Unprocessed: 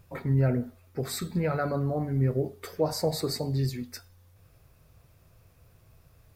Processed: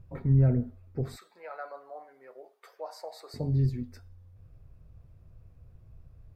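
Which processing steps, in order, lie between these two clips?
0:01.16–0:03.34: high-pass filter 680 Hz 24 dB per octave
spectral tilt −3.5 dB per octave
level −7.5 dB

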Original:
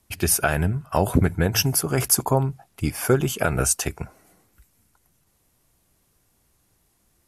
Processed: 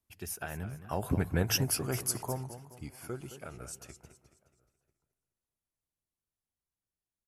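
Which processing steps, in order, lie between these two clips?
source passing by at 0:01.52, 13 m/s, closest 4.6 metres
slap from a distant wall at 170 metres, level −29 dB
feedback echo with a swinging delay time 212 ms, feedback 42%, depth 157 cents, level −12 dB
level −8 dB

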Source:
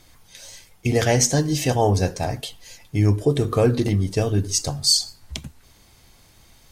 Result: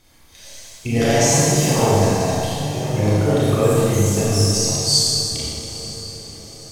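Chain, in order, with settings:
feedback delay with all-pass diffusion 906 ms, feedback 50%, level −15 dB
delay with pitch and tempo change per echo 245 ms, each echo +3 semitones, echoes 3, each echo −6 dB
four-comb reverb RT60 2.1 s, combs from 27 ms, DRR −7.5 dB
level −5 dB

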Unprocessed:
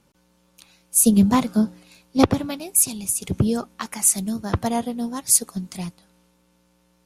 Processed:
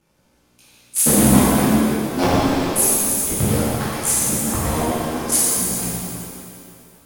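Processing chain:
sub-harmonics by changed cycles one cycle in 3, muted
reverb with rising layers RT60 2.3 s, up +7 semitones, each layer −8 dB, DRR −10 dB
level −5 dB

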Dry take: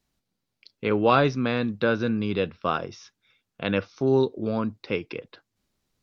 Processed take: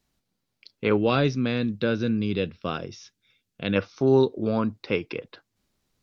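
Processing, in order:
0:00.97–0:03.76: parametric band 1,000 Hz −10.5 dB 1.7 octaves
level +2 dB

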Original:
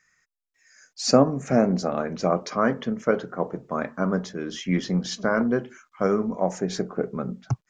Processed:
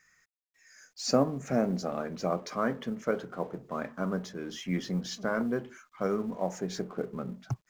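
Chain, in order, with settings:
mu-law and A-law mismatch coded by mu
level −8 dB

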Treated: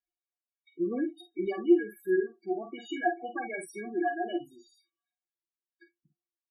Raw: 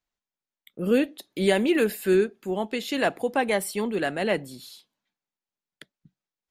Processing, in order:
stiff-string resonator 340 Hz, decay 0.25 s, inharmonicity 0.03
spectral peaks only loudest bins 8
high-shelf EQ 2,900 Hz −9.5 dB
in parallel at +1 dB: speech leveller within 5 dB 0.5 s
on the sum: high-pass filter 48 Hz
parametric band 140 Hz +5 dB 1.7 octaves
on a send: ambience of single reflections 48 ms −8 dB, 61 ms −16 dB
on the sum: level +2 dB

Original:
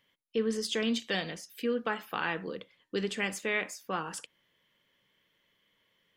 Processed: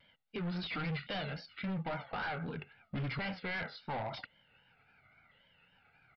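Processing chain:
pitch shifter swept by a sawtooth −7.5 semitones, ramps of 1,063 ms
comb filter 1.4 ms, depth 78%
in parallel at +1 dB: downward compressor, threshold −46 dBFS, peak gain reduction 19 dB
on the sum: gain into a clipping stage and back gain 34 dB
downsampling to 11,025 Hz
high-frequency loss of the air 160 metres
pitch vibrato 3.7 Hz 90 cents

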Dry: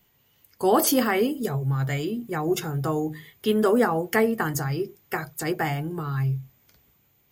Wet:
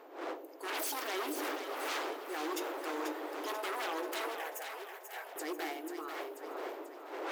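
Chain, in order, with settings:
wind on the microphone 590 Hz −29 dBFS
wave folding −22.5 dBFS
transient designer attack −4 dB, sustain +2 dB
linear-phase brick-wall high-pass 280 Hz
0:04.35–0:05.36: phaser with its sweep stopped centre 1,200 Hz, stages 6
echo with a time of its own for lows and highs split 620 Hz, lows 113 ms, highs 488 ms, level −7 dB
level −9 dB

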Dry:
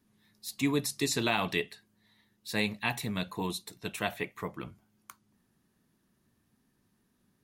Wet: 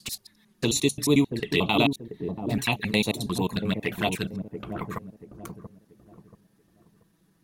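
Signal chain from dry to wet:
slices reordered back to front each 89 ms, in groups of 7
flanger swept by the level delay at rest 6.3 ms, full sweep at −29.5 dBFS
delay with a low-pass on its return 683 ms, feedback 32%, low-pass 520 Hz, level −5 dB
level +8.5 dB

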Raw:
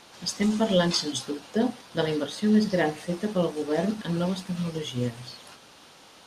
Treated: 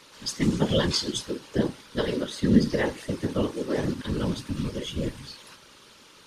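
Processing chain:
random phases in short frames
parametric band 720 Hz −14.5 dB 0.28 octaves

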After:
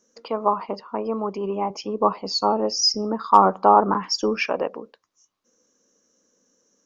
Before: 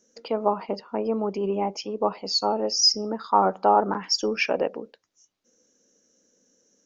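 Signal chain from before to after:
parametric band 1,100 Hz +11.5 dB 0.45 octaves
hard clipping −2.5 dBFS, distortion −38 dB
0:01.70–0:04.46: low-shelf EQ 460 Hz +7 dB
level −1 dB

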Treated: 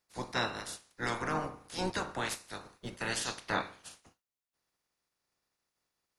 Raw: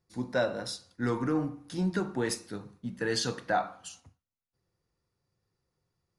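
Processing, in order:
ceiling on every frequency bin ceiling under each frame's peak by 25 dB
level −4.5 dB

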